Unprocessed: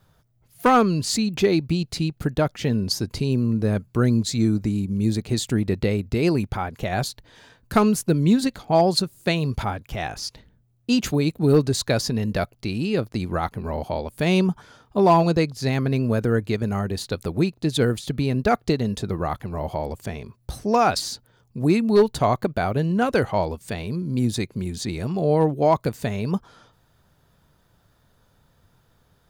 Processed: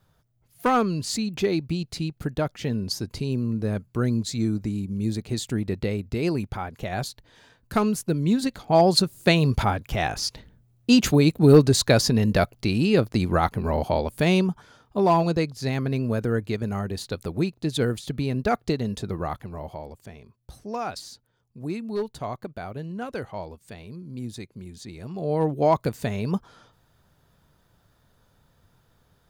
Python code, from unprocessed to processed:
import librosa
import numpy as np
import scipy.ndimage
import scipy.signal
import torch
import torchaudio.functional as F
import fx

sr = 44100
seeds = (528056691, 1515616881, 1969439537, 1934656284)

y = fx.gain(x, sr, db=fx.line((8.26, -4.5), (9.16, 3.5), (14.09, 3.5), (14.49, -3.5), (19.29, -3.5), (19.98, -12.0), (24.94, -12.0), (25.58, -1.5)))